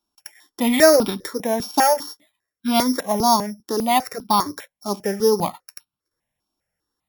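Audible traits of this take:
a buzz of ramps at a fixed pitch in blocks of 8 samples
notches that jump at a steady rate 5 Hz 510–1,900 Hz

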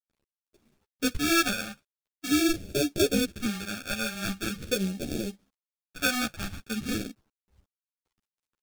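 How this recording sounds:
aliases and images of a low sample rate 1,000 Hz, jitter 0%
phaser sweep stages 2, 0.44 Hz, lowest notch 400–1,100 Hz
a quantiser's noise floor 12 bits, dither none
a shimmering, thickened sound

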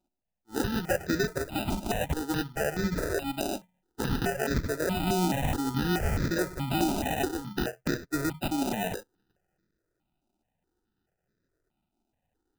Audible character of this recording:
aliases and images of a low sample rate 1,100 Hz, jitter 0%
notches that jump at a steady rate 4.7 Hz 480–2,900 Hz

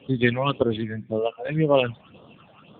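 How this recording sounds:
a quantiser's noise floor 10 bits, dither none
phaser sweep stages 8, 1.9 Hz, lowest notch 360–2,400 Hz
AMR narrowband

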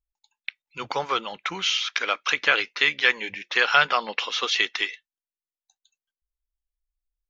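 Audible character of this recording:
background noise floor −96 dBFS
spectral slope −0.5 dB per octave

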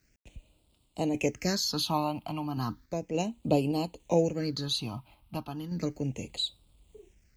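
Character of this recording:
a quantiser's noise floor 12 bits, dither none
phaser sweep stages 6, 0.34 Hz, lowest notch 450–1,700 Hz
sample-and-hold tremolo

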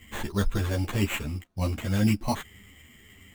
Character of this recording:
aliases and images of a low sample rate 5,100 Hz, jitter 0%
a shimmering, thickened sound

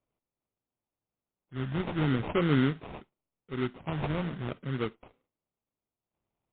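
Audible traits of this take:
phaser sweep stages 12, 0.43 Hz, lowest notch 420–2,400 Hz
aliases and images of a low sample rate 1,700 Hz, jitter 20%
MP3

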